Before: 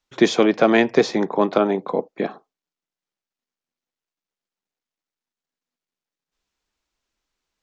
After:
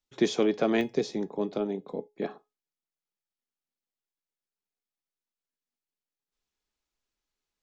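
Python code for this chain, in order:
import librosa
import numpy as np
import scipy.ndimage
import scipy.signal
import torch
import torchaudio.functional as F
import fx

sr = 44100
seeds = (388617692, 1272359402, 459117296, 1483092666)

y = fx.peak_eq(x, sr, hz=1300.0, db=fx.steps((0.0, -6.5), (0.81, -15.0), (2.22, -2.5)), octaves=2.4)
y = fx.comb_fb(y, sr, f0_hz=420.0, decay_s=0.23, harmonics='all', damping=0.0, mix_pct=60)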